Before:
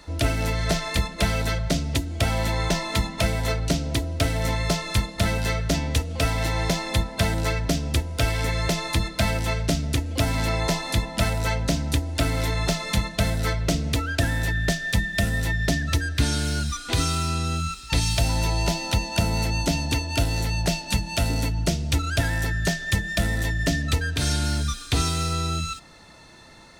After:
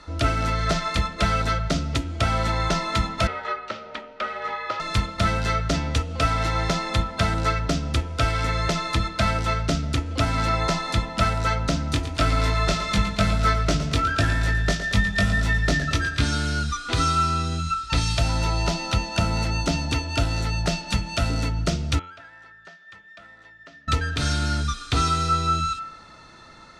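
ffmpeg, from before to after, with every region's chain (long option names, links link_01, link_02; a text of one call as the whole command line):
ffmpeg -i in.wav -filter_complex "[0:a]asettb=1/sr,asplit=3[link_01][link_02][link_03];[link_01]atrim=end=3.274[link_04];[link_02]atrim=start=3.27:end=4.8,asetpts=PTS-STARTPTS,afade=type=in:duration=0.004:curve=qsin,afade=type=out:start_time=1.526:duration=0.004:curve=qsin,highpass=700,lowpass=2400,afreqshift=-61[link_05];[link_03]atrim=start=4.796[link_06];[link_04][link_05]acrossfade=duration=0.004:curve1=hsin:curve2=qsin[link_07];[link_07][link_06]acrossfade=duration=0.004:curve1=qsin:curve2=hsin,asettb=1/sr,asplit=3[link_08][link_09][link_10];[link_08]atrim=end=11.914[link_11];[link_09]atrim=start=11.91:end=16.22,asetpts=PTS-STARTPTS,afade=type=in:duration=0.004:curve=qsin,afade=type=out:start_time=4.306:duration=0.004:curve=qsin,asplit=2[link_12][link_13];[link_13]adelay=20,volume=-4dB[link_14];[link_12][link_14]amix=inputs=2:normalize=0,atrim=end_sample=190071,aecho=1:1:114|228|342|456|570|684:0.266|0.138|0.0719|0.0374|0.0195|0.0101,atrim=end_sample=190071[link_15];[link_10]atrim=start=16.216[link_16];[link_11][link_15]acrossfade=duration=0.004:curve1=hsin:curve2=qsin[link_17];[link_17][link_16]acrossfade=duration=0.004:curve1=qsin:curve2=hsin,asettb=1/sr,asplit=3[link_18][link_19][link_20];[link_18]atrim=end=21.994[link_21];[link_19]atrim=start=21.99:end=23.88,asetpts=PTS-STARTPTS,afade=type=in:duration=0.004:curve=qsin,afade=type=out:start_time=1.886:duration=0.004:curve=qsin,lowpass=1400,aderivative[link_22];[link_20]atrim=start=23.876[link_23];[link_21][link_22]acrossfade=duration=0.004:curve1=hsin:curve2=qsin[link_24];[link_24][link_23]acrossfade=duration=0.004:curve1=qsin:curve2=hsin,lowpass=6600,equalizer=frequency=1300:width_type=o:width=0.25:gain=12,bandreject=frequency=88.65:width_type=h:width=4,bandreject=frequency=177.3:width_type=h:width=4,bandreject=frequency=265.95:width_type=h:width=4,bandreject=frequency=354.6:width_type=h:width=4,bandreject=frequency=443.25:width_type=h:width=4,bandreject=frequency=531.9:width_type=h:width=4,bandreject=frequency=620.55:width_type=h:width=4,bandreject=frequency=709.2:width_type=h:width=4,bandreject=frequency=797.85:width_type=h:width=4,bandreject=frequency=886.5:width_type=h:width=4,bandreject=frequency=975.15:width_type=h:width=4,bandreject=frequency=1063.8:width_type=h:width=4,bandreject=frequency=1152.45:width_type=h:width=4,bandreject=frequency=1241.1:width_type=h:width=4,bandreject=frequency=1329.75:width_type=h:width=4,bandreject=frequency=1418.4:width_type=h:width=4,bandreject=frequency=1507.05:width_type=h:width=4,bandreject=frequency=1595.7:width_type=h:width=4,bandreject=frequency=1684.35:width_type=h:width=4,bandreject=frequency=1773:width_type=h:width=4,bandreject=frequency=1861.65:width_type=h:width=4,bandreject=frequency=1950.3:width_type=h:width=4,bandreject=frequency=2038.95:width_type=h:width=4,bandreject=frequency=2127.6:width_type=h:width=4,bandreject=frequency=2216.25:width_type=h:width=4,bandreject=frequency=2304.9:width_type=h:width=4,bandreject=frequency=2393.55:width_type=h:width=4,bandreject=frequency=2482.2:width_type=h:width=4,bandreject=frequency=2570.85:width_type=h:width=4,bandreject=frequency=2659.5:width_type=h:width=4,bandreject=frequency=2748.15:width_type=h:width=4,bandreject=frequency=2836.8:width_type=h:width=4,bandreject=frequency=2925.45:width_type=h:width=4,bandreject=frequency=3014.1:width_type=h:width=4,bandreject=frequency=3102.75:width_type=h:width=4,bandreject=frequency=3191.4:width_type=h:width=4,bandreject=frequency=3280.05:width_type=h:width=4,bandreject=frequency=3368.7:width_type=h:width=4" out.wav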